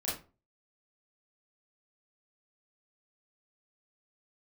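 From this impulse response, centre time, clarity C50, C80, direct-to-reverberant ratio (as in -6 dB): 42 ms, 4.5 dB, 12.0 dB, -8.0 dB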